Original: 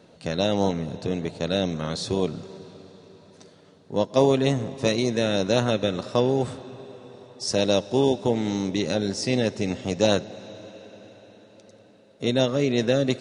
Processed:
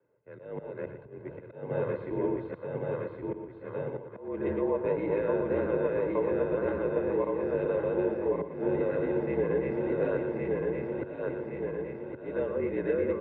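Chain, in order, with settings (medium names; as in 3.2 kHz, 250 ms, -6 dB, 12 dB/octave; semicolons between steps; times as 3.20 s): backward echo that repeats 558 ms, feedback 77%, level 0 dB; comb 1.9 ms, depth 59%; compression 3:1, threshold -18 dBFS, peak gain reduction 6 dB; slow attack 225 ms; on a send: delay 118 ms -8.5 dB; on the sum: mistuned SSB -51 Hz 180–2100 Hz; three bands expanded up and down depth 40%; trim -7 dB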